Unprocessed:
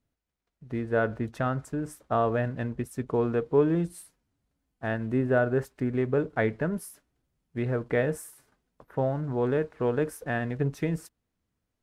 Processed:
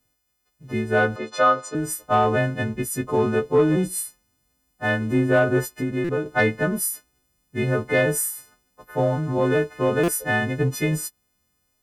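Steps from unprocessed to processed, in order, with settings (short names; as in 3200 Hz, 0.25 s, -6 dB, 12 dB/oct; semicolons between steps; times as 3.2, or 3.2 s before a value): frequency quantiser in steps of 3 st; 5.68–6.26 compressor 2:1, threshold -31 dBFS, peak gain reduction 6 dB; soft clip -15 dBFS, distortion -22 dB; 1.16–1.75 speaker cabinet 370–7100 Hz, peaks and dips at 520 Hz +10 dB, 1200 Hz +10 dB, 1700 Hz -4 dB, 4000 Hz +6 dB; stuck buffer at 6.04/10.03, samples 256, times 8; gain +6.5 dB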